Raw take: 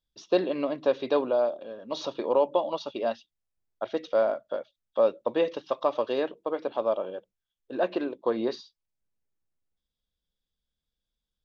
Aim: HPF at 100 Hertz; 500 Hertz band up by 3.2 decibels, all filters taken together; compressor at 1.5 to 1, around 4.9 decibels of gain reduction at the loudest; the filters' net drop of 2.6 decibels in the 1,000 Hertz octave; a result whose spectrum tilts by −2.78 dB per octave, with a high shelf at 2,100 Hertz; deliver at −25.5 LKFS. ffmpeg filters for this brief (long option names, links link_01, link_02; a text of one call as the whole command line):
ffmpeg -i in.wav -af "highpass=100,equalizer=frequency=500:width_type=o:gain=5.5,equalizer=frequency=1000:width_type=o:gain=-4.5,highshelf=frequency=2100:gain=-8,acompressor=threshold=-29dB:ratio=1.5,volume=4.5dB" out.wav